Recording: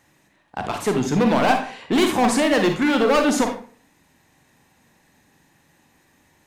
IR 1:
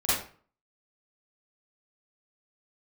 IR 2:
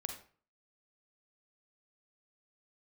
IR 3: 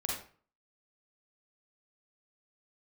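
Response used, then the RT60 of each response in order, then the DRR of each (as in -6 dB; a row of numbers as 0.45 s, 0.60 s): 2; 0.45 s, 0.45 s, 0.45 s; -13.0 dB, 4.0 dB, -3.5 dB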